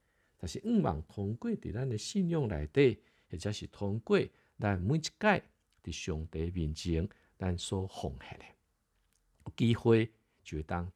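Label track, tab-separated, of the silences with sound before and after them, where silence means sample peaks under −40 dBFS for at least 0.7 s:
8.410000	9.460000	silence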